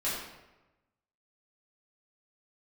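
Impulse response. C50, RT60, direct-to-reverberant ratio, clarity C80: 1.0 dB, 1.1 s, -9.5 dB, 3.5 dB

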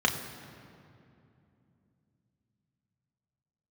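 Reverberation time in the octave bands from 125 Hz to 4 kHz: 4.5 s, 4.2 s, 2.9 s, 2.5 s, 2.1 s, 1.6 s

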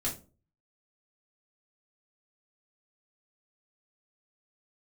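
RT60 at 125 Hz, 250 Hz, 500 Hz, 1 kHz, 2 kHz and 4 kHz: 0.55 s, 0.45 s, 0.40 s, 0.30 s, 0.25 s, 0.20 s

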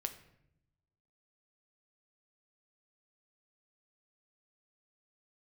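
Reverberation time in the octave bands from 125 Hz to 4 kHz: 1.4 s, 1.2 s, 0.85 s, 0.70 s, 0.70 s, 0.55 s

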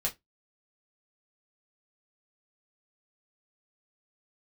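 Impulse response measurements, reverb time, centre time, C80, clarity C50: 0.15 s, 12 ms, 31.0 dB, 19.0 dB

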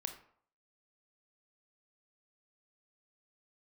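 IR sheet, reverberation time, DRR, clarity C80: 0.60 s, 6.0 dB, 13.0 dB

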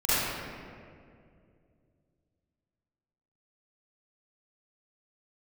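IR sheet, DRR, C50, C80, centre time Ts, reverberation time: -16.0 dB, -8.5 dB, -3.5 dB, 170 ms, 2.3 s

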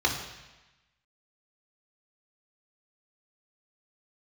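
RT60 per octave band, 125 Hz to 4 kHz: 1.2 s, 1.1 s, 1.0 s, 1.1 s, 1.2 s, 1.1 s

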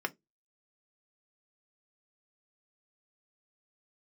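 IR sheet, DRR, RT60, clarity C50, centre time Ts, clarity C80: 5.0 dB, 0.20 s, 27.5 dB, 3 ms, 39.0 dB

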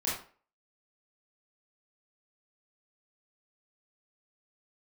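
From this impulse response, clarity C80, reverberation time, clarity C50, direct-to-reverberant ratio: 8.0 dB, 0.40 s, 2.5 dB, -7.5 dB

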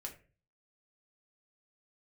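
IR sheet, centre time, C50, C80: 14 ms, 11.5 dB, 16.5 dB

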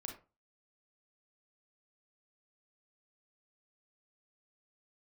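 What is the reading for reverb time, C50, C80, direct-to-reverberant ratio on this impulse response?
0.30 s, 7.0 dB, 13.5 dB, 2.0 dB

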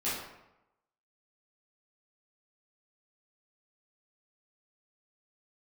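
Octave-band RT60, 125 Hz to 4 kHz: 0.90 s, 0.85 s, 0.90 s, 0.90 s, 0.75 s, 0.55 s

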